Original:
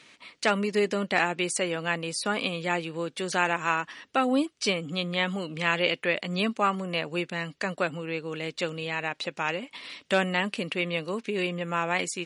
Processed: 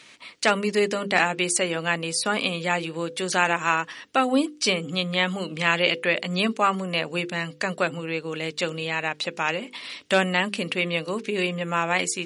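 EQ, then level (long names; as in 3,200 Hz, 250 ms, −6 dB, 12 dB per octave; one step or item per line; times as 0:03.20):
high-shelf EQ 5,100 Hz +4.5 dB
mains-hum notches 50/100/150/200/250/300/350/400/450/500 Hz
+3.5 dB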